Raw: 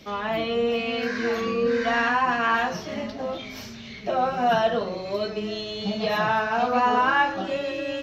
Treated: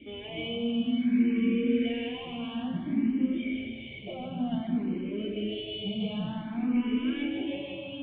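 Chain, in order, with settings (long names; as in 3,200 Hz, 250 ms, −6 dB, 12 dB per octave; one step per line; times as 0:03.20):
in parallel at 0 dB: brickwall limiter −21.5 dBFS, peak gain reduction 11.5 dB
on the sum: hard clipping −15.5 dBFS, distortion −16 dB
formant resonators in series i
feedback echo with a high-pass in the loop 154 ms, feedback 67%, high-pass 160 Hz, level −6.5 dB
frequency shifter mixed with the dry sound +0.55 Hz
level +5.5 dB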